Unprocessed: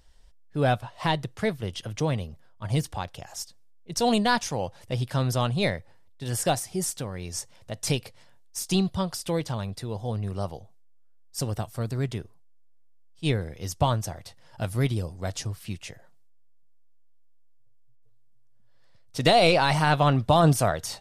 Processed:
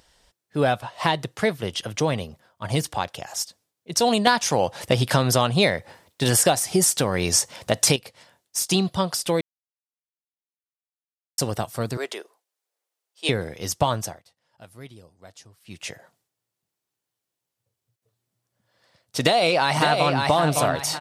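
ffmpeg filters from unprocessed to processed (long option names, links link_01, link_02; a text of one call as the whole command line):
ffmpeg -i in.wav -filter_complex "[0:a]asettb=1/sr,asplit=3[link_01][link_02][link_03];[link_01]atrim=end=11.974[link_04];[link_02]atrim=start=11.97:end=13.29,asetpts=PTS-STARTPTS,afade=type=in:duration=0.004:curve=qsin,afade=type=out:start_time=1.316:duration=0.004:curve=qsin,highpass=frequency=400:width=0.5412,highpass=frequency=400:width=1.3066[link_05];[link_03]atrim=start=13.286[link_06];[link_04][link_05]acrossfade=duration=0.004:curve1=hsin:curve2=qsin[link_07];[link_07][link_06]acrossfade=duration=0.004:curve1=qsin:curve2=hsin,asplit=2[link_08][link_09];[link_09]afade=type=in:start_time=19.2:duration=0.01,afade=type=out:start_time=20.2:duration=0.01,aecho=0:1:560|1120|1680:0.530884|0.132721|0.0331803[link_10];[link_08][link_10]amix=inputs=2:normalize=0,asplit=7[link_11][link_12][link_13][link_14][link_15][link_16][link_17];[link_11]atrim=end=4.272[link_18];[link_12]atrim=start=4.268:end=7.962,asetpts=PTS-STARTPTS,volume=10.5dB[link_19];[link_13]atrim=start=7.958:end=9.41,asetpts=PTS-STARTPTS,afade=type=out:start_time=1.448:duration=0.004:curve=hsin[link_20];[link_14]atrim=start=9.41:end=11.38,asetpts=PTS-STARTPTS,volume=0[link_21];[link_15]atrim=start=11.38:end=14.22,asetpts=PTS-STARTPTS,afade=type=in:duration=0.004:curve=hsin,afade=type=out:start_time=2.6:duration=0.24:silence=0.0944061[link_22];[link_16]atrim=start=14.22:end=15.65,asetpts=PTS-STARTPTS,volume=-20.5dB[link_23];[link_17]atrim=start=15.65,asetpts=PTS-STARTPTS,afade=type=in:duration=0.24:silence=0.0944061[link_24];[link_18][link_19]acrossfade=duration=0.004:curve1=hsin:curve2=hsin[link_25];[link_20][link_21][link_22][link_23][link_24]concat=n=5:v=0:a=1[link_26];[link_25][link_26]acrossfade=duration=0.004:curve1=hsin:curve2=hsin,highpass=frequency=280:poles=1,acompressor=threshold=-24dB:ratio=6,volume=8dB" out.wav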